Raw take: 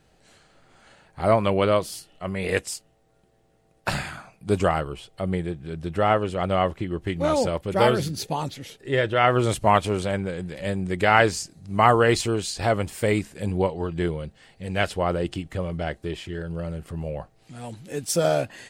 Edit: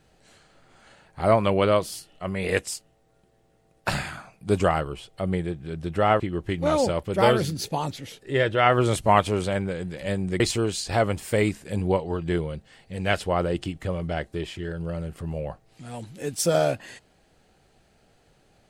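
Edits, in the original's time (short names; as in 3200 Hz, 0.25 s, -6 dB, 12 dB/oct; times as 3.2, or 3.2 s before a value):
6.2–6.78 cut
10.98–12.1 cut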